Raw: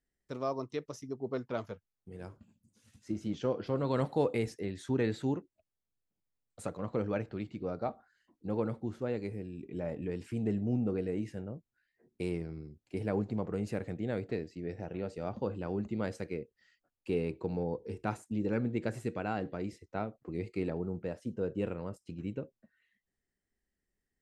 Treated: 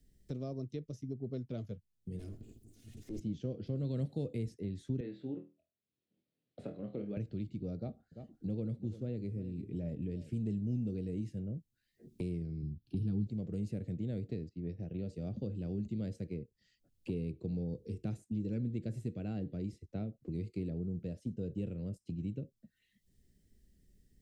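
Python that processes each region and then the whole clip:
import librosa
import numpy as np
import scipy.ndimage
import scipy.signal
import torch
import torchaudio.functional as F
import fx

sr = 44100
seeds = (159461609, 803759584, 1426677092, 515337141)

y = fx.chain(x, sr, fx.lower_of_two(delay_ms=2.8),
    fx.high_shelf(hz=4800.0, db=9.5),
    fx.transient(attack_db=-10, sustain_db=6), at=(2.19, 3.2))
y = fx.chain(y, sr, fx.highpass(hz=320.0, slope=12),
    fx.air_absorb(metres=390.0),
    fx.room_flutter(wall_m=4.2, rt60_s=0.26), at=(5.0, 7.17))
y = fx.chain(y, sr, fx.high_shelf(hz=3500.0, db=-8.5),
    fx.echo_single(ms=343, db=-15.5), at=(7.77, 10.33))
y = fx.chain(y, sr, fx.low_shelf(hz=470.0, db=7.5),
    fx.fixed_phaser(hz=2100.0, stages=6), at=(12.62, 13.27))
y = fx.chain(y, sr, fx.peak_eq(hz=8100.0, db=-11.5, octaves=1.0),
    fx.upward_expand(threshold_db=-59.0, expansion=1.5), at=(14.49, 14.99))
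y = fx.curve_eq(y, sr, hz=(160.0, 640.0, 950.0, 3600.0), db=(0, -15, -30, -9))
y = fx.band_squash(y, sr, depth_pct=70)
y = F.gain(torch.from_numpy(y), 1.5).numpy()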